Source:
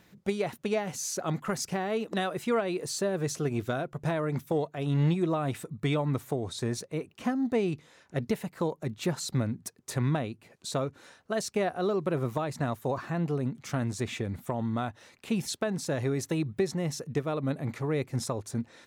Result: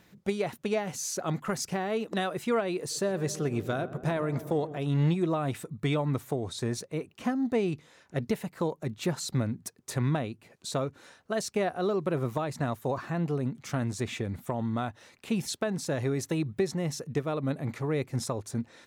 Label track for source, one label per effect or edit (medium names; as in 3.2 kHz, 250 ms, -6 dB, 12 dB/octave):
2.780000	4.780000	filtered feedback delay 127 ms, feedback 81%, low-pass 1.5 kHz, level -14 dB